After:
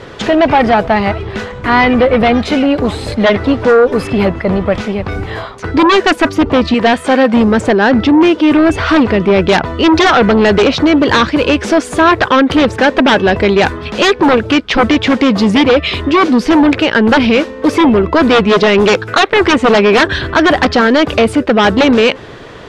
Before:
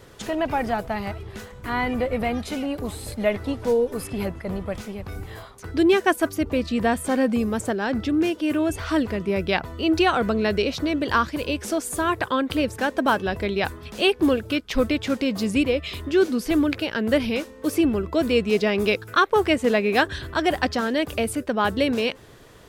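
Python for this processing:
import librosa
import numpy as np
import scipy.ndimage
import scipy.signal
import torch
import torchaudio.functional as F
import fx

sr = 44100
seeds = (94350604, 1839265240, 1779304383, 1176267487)

y = fx.low_shelf(x, sr, hz=260.0, db=-12.0, at=(6.74, 7.34))
y = fx.fold_sine(y, sr, drive_db=13, ceiling_db=-5.0)
y = scipy.signal.sosfilt(scipy.signal.butter(2, 3800.0, 'lowpass', fs=sr, output='sos'), y)
y = fx.low_shelf(y, sr, hz=110.0, db=-8.0)
y = y * librosa.db_to_amplitude(1.5)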